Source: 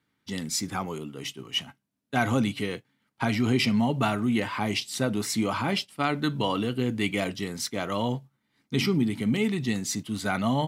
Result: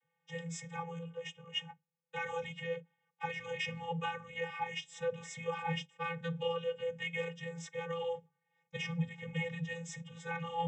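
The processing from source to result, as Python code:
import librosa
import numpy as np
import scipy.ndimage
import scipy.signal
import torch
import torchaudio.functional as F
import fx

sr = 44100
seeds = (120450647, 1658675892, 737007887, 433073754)

y = fx.dynamic_eq(x, sr, hz=730.0, q=0.71, threshold_db=-41.0, ratio=4.0, max_db=-7)
y = fx.vocoder(y, sr, bands=32, carrier='square', carrier_hz=168.0)
y = fx.fixed_phaser(y, sr, hz=900.0, stages=8)
y = y * librosa.db_to_amplitude(5.0)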